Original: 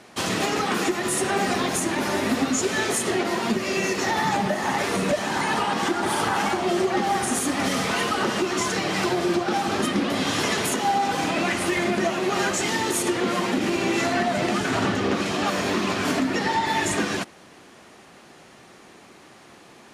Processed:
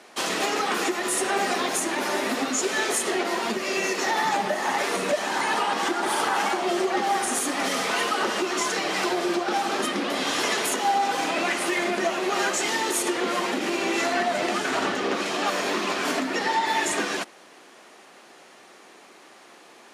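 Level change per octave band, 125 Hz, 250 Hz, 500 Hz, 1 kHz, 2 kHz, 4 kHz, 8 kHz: −12.5, −5.0, −1.5, 0.0, 0.0, 0.0, 0.0 decibels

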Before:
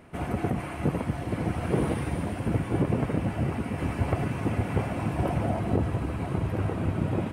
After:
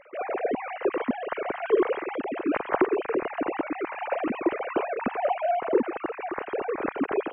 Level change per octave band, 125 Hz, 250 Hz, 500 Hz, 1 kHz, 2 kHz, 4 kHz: −25.0, −1.5, +6.5, +5.5, +4.5, −1.5 decibels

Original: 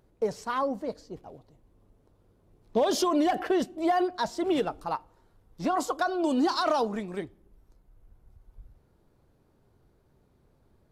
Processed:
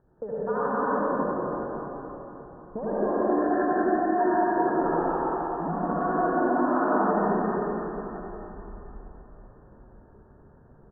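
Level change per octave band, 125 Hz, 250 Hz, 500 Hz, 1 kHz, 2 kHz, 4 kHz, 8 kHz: +8.5 dB, +3.0 dB, +3.5 dB, +4.5 dB, +4.0 dB, below −35 dB, below −35 dB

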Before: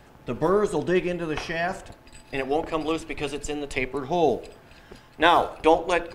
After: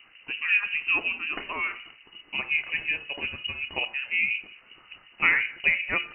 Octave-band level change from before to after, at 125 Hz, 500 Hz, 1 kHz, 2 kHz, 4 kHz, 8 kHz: −15.0 dB, −21.0 dB, −13.5 dB, +7.0 dB, +1.0 dB, below −40 dB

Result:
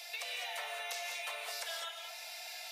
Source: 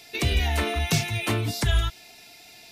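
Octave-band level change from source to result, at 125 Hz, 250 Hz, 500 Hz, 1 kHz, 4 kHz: below −40 dB, below −40 dB, −14.0 dB, −10.5 dB, −9.5 dB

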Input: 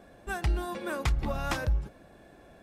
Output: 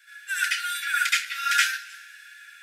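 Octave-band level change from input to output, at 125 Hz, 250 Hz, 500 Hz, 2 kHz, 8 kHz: below −40 dB, below −40 dB, below −40 dB, +15.0 dB, +16.0 dB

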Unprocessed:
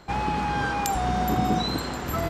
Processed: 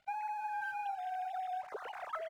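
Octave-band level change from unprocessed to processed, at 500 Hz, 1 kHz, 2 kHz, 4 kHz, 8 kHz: −14.5 dB, −10.5 dB, −11.5 dB, −25.5 dB, below −25 dB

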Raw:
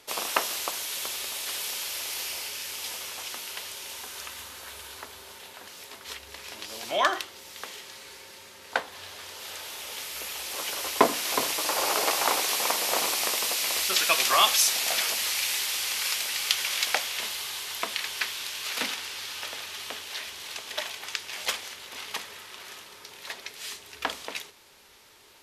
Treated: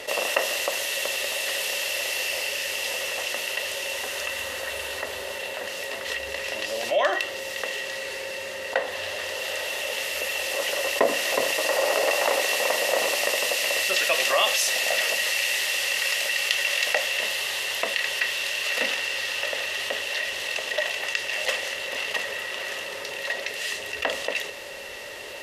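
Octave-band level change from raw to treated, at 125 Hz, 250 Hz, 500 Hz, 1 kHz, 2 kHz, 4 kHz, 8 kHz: can't be measured, −1.0 dB, +8.5 dB, −1.0 dB, +8.0 dB, +2.5 dB, −0.5 dB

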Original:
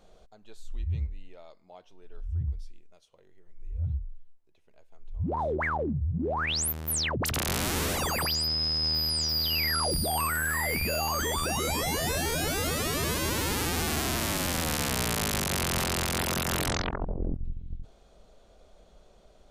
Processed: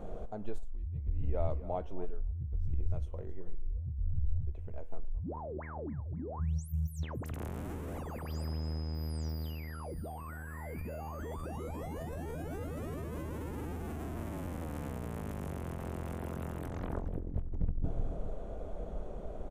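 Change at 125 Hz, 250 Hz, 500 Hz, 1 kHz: −3.5, −7.0, −7.5, −13.0 decibels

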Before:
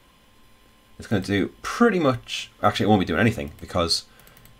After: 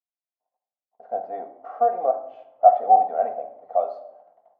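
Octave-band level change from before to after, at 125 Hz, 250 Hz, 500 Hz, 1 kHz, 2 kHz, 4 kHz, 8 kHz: below −35 dB, below −25 dB, +1.0 dB, +8.0 dB, below −20 dB, below −40 dB, below −40 dB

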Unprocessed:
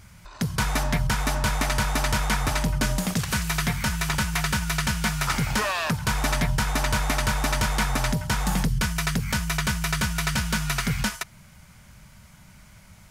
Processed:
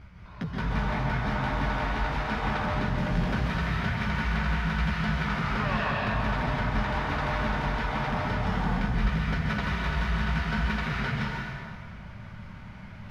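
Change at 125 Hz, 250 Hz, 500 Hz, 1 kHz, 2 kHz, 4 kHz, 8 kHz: −2.5, −1.5, −1.0, −1.5, −3.0, −9.0, −24.5 decibels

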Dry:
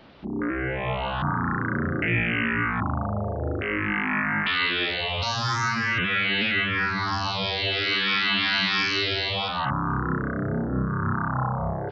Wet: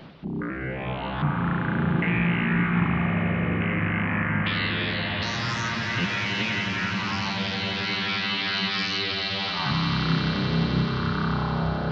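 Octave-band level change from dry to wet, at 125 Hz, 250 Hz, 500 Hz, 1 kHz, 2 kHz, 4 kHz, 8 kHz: +3.0 dB, +3.0 dB, −1.5 dB, −2.5 dB, −2.5 dB, −1.5 dB, can't be measured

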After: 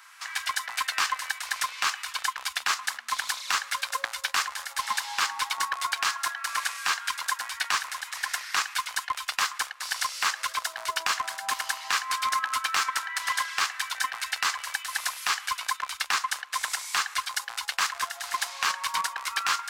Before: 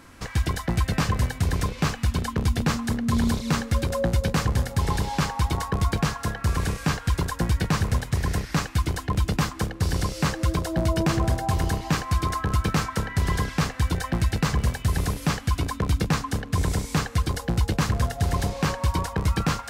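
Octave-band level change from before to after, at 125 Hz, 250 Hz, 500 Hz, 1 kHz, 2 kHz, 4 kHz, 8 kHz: below −40 dB, below −30 dB, −18.5 dB, +1.5 dB, +4.5 dB, +5.0 dB, +4.0 dB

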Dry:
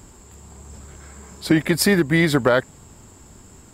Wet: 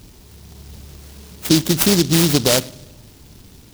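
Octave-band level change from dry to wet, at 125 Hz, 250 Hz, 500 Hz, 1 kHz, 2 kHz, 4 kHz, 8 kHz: +3.0, +2.0, −0.5, −2.0, −5.0, +8.5, +9.0 decibels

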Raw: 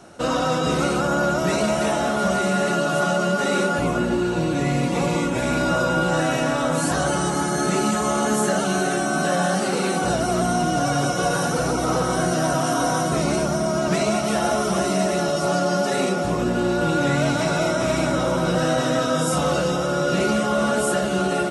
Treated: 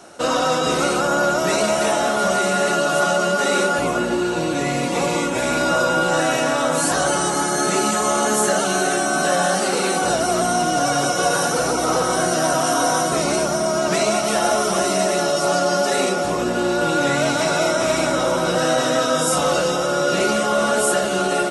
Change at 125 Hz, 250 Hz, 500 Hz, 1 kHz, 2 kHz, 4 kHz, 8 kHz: −5.0, −1.5, +3.0, +3.5, +3.5, +5.0, +6.0 decibels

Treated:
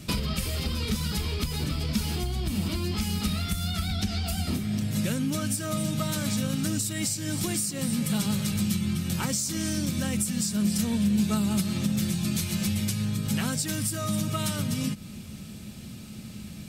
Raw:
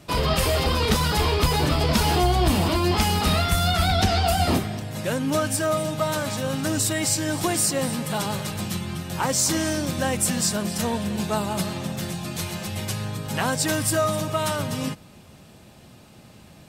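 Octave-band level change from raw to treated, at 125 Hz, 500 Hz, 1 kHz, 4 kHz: −3.0, −13.0, −14.5, −6.0 decibels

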